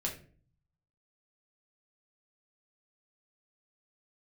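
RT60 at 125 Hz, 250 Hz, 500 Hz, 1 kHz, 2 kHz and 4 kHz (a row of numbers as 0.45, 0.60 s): 1.0, 0.65, 0.50, 0.35, 0.40, 0.30 s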